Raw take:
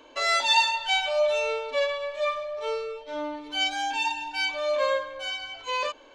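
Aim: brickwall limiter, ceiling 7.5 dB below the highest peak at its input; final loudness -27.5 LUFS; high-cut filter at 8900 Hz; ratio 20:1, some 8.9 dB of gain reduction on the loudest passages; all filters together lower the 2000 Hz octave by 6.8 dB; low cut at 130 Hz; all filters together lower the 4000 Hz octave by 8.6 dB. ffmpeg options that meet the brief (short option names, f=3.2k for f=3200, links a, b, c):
-af "highpass=130,lowpass=8.9k,equalizer=f=2k:t=o:g=-5.5,equalizer=f=4k:t=o:g=-9,acompressor=threshold=-28dB:ratio=20,volume=8.5dB,alimiter=limit=-20dB:level=0:latency=1"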